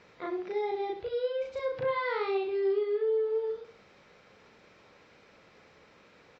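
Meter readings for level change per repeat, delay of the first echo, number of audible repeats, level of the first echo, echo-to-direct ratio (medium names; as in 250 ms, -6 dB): -9.5 dB, 66 ms, 2, -9.5 dB, -9.0 dB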